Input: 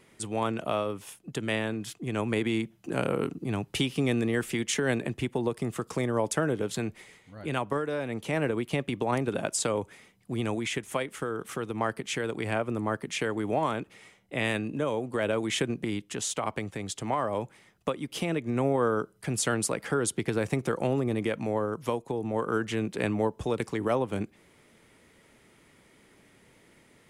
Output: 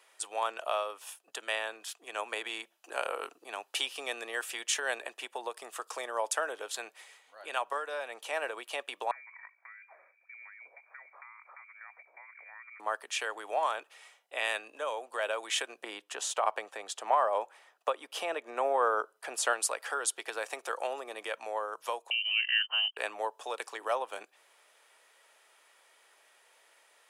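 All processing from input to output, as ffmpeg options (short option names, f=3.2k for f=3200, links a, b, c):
-filter_complex "[0:a]asettb=1/sr,asplit=3[a][b][c];[a]atrim=end=9.114[d];[b]atrim=start=9.11:end=12.8,asetpts=PTS-STARTPTS,afade=t=in:d=0.004:c=qsin,afade=t=out:st=3.686:d=0.004:c=qsin,acompressor=threshold=-44dB:ratio=8:attack=3.2:release=140:knee=1:detection=peak,bandreject=f=54.25:t=h:w=4,bandreject=f=108.5:t=h:w=4,bandreject=f=162.75:t=h:w=4,bandreject=f=217:t=h:w=4,bandreject=f=271.25:t=h:w=4,bandreject=f=325.5:t=h:w=4,bandreject=f=379.75:t=h:w=4,lowpass=f=2.1k:t=q:w=0.5098,lowpass=f=2.1k:t=q:w=0.6013,lowpass=f=2.1k:t=q:w=0.9,lowpass=f=2.1k:t=q:w=2.563,afreqshift=-2500[e];[c]atrim=start=12.796[f];[d][e]acrossfade=d=0.004:c1=hsin:c2=qsin[g];[g][f]acrossfade=d=0.004:c1=qsin:c2=hsin,asettb=1/sr,asplit=3[h][i][j];[h]atrim=end=15.834[k];[i]atrim=start=15.83:end=19.53,asetpts=PTS-STARTPTS,afade=t=in:d=0.004:c=qsin,afade=t=out:st=3.696:d=0.004:c=qsin,highshelf=f=2k:g=-10,acontrast=55[l];[j]atrim=start=19.526[m];[k][l]acrossfade=d=0.004:c1=hsin:c2=qsin[n];[n][m]acrossfade=d=0.004:c1=qsin:c2=hsin,asettb=1/sr,asplit=3[o][p][q];[o]atrim=end=22.104[r];[p]atrim=start=22.1:end=22.97,asetpts=PTS-STARTPTS,afade=t=in:d=0.004:c=qsin,afade=t=out:st=0.866:d=0.004:c=qsin,agate=range=-37dB:threshold=-35dB:ratio=16:release=100:detection=peak,lowpass=f=2.7k:t=q:w=0.5098,lowpass=f=2.7k:t=q:w=0.6013,lowpass=f=2.7k:t=q:w=0.9,lowpass=f=2.7k:t=q:w=2.563,afreqshift=-3200[s];[q]atrim=start=22.966[t];[r][s]acrossfade=d=0.004:c1=hsin:c2=qsin[u];[u][t]acrossfade=d=0.004:c1=qsin:c2=hsin,highpass=f=620:w=0.5412,highpass=f=620:w=1.3066,bandreject=f=2.1k:w=8"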